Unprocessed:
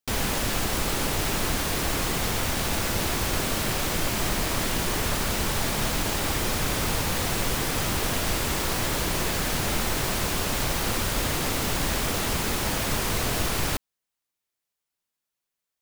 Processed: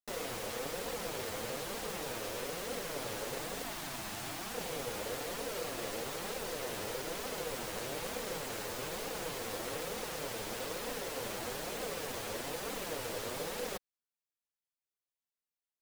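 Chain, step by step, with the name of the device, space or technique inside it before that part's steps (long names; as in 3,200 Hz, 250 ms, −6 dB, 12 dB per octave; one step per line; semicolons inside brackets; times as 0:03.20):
0:03.63–0:04.55: high-pass filter 130 Hz 24 dB per octave
alien voice (ring modulation 490 Hz; flanger 1.1 Hz, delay 3.7 ms, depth 6.3 ms, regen +5%)
level −7.5 dB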